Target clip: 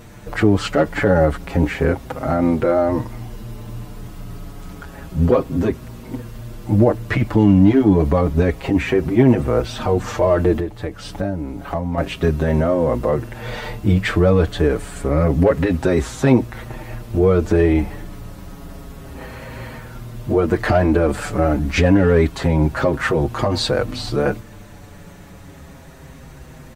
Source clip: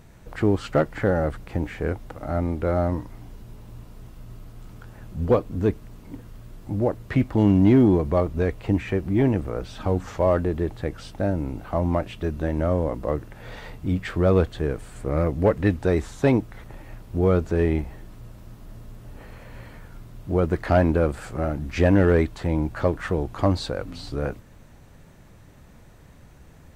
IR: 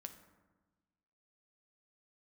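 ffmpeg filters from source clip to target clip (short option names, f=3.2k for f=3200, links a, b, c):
-filter_complex "[0:a]lowshelf=f=73:g=-6.5,asettb=1/sr,asplit=3[a][b][c];[a]atrim=end=10.594[d];[b]atrim=start=10.59:end=11.98,asetpts=PTS-STARTPTS,afade=t=in:d=0.004:c=qsin,afade=t=out:st=1.386:d=0.004:c=qsin,acompressor=threshold=-36dB:ratio=3[e];[c]atrim=start=11.976[f];[d][e]acrossfade=d=0.004:c1=hsin:c2=qsin[g];[g][f]acrossfade=d=0.004:c1=qsin:c2=hsin,alimiter=level_in=15.5dB:limit=-1dB:release=50:level=0:latency=1,asplit=2[h][i];[i]adelay=6.3,afreqshift=-0.29[j];[h][j]amix=inputs=2:normalize=1,volume=-1dB"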